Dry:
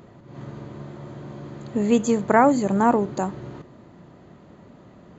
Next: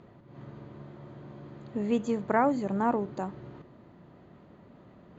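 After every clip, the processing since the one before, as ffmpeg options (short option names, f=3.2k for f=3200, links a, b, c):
-af "lowpass=4.2k,areverse,acompressor=mode=upward:threshold=-39dB:ratio=2.5,areverse,volume=-8.5dB"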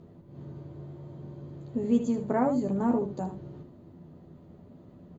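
-filter_complex "[0:a]equalizer=f=1.8k:t=o:w=2.9:g=-14.5,asplit=2[a][b];[b]aecho=0:1:12|77:0.631|0.376[c];[a][c]amix=inputs=2:normalize=0,volume=3.5dB"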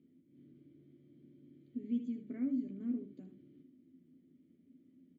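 -filter_complex "[0:a]asplit=3[a][b][c];[a]bandpass=f=270:t=q:w=8,volume=0dB[d];[b]bandpass=f=2.29k:t=q:w=8,volume=-6dB[e];[c]bandpass=f=3.01k:t=q:w=8,volume=-9dB[f];[d][e][f]amix=inputs=3:normalize=0,volume=-3.5dB"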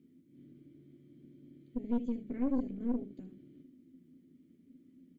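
-af "equalizer=f=640:w=1.8:g=-4.5,aeval=exprs='(tanh(50.1*val(0)+0.7)-tanh(0.7))/50.1':c=same,volume=8dB"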